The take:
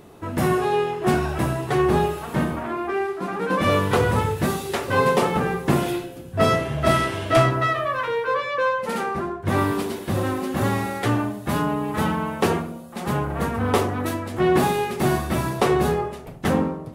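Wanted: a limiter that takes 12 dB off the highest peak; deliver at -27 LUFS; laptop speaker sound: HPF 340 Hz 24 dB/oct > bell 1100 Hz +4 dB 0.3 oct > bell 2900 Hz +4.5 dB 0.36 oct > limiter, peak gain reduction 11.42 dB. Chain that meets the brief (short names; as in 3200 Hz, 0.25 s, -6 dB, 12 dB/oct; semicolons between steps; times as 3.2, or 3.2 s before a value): limiter -18.5 dBFS; HPF 340 Hz 24 dB/oct; bell 1100 Hz +4 dB 0.3 oct; bell 2900 Hz +4.5 dB 0.36 oct; gain +8 dB; limiter -19 dBFS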